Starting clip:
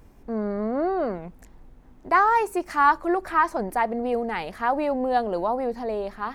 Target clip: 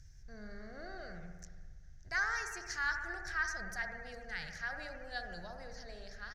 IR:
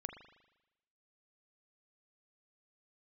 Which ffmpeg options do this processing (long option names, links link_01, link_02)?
-filter_complex "[0:a]firequalizer=gain_entry='entry(140,0);entry(230,-27);entry(700,-20);entry(1000,-29);entry(1600,-1);entry(2500,-11);entry(5900,13);entry(8400,-8);entry(12000,-13)':delay=0.05:min_phase=1[link_01];[1:a]atrim=start_sample=2205,asetrate=30429,aresample=44100[link_02];[link_01][link_02]afir=irnorm=-1:irlink=0,volume=-1.5dB"